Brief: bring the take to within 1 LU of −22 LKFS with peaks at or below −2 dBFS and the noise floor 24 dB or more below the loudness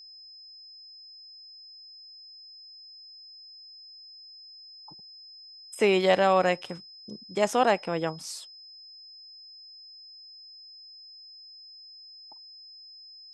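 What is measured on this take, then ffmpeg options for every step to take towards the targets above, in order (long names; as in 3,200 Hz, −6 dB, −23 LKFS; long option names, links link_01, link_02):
interfering tone 5,100 Hz; level of the tone −46 dBFS; integrated loudness −25.5 LKFS; sample peak −9.5 dBFS; target loudness −22.0 LKFS
→ -af "bandreject=frequency=5100:width=30"
-af "volume=3.5dB"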